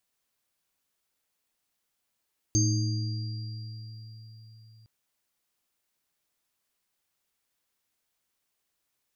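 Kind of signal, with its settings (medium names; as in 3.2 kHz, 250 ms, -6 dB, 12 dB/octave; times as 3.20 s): sine partials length 2.31 s, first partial 111 Hz, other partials 217/312/4760/6370 Hz, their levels -13/-4.5/-12/-1.5 dB, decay 4.52 s, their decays 3.14/2.06/4.38/0.80 s, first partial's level -22 dB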